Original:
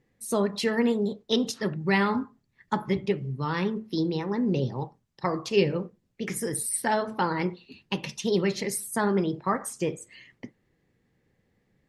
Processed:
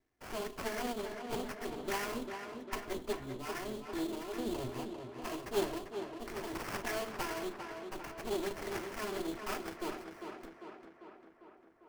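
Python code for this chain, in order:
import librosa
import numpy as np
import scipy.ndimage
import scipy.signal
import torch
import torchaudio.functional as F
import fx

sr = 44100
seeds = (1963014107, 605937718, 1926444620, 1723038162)

y = fx.lower_of_two(x, sr, delay_ms=2.9)
y = fx.hum_notches(y, sr, base_hz=50, count=7)
y = fx.vibrato(y, sr, rate_hz=2.6, depth_cents=48.0)
y = fx.sample_hold(y, sr, seeds[0], rate_hz=3800.0, jitter_pct=20)
y = fx.echo_tape(y, sr, ms=398, feedback_pct=68, wet_db=-5.5, lp_hz=3200.0, drive_db=17.0, wow_cents=15)
y = y * 10.0 ** (-8.5 / 20.0)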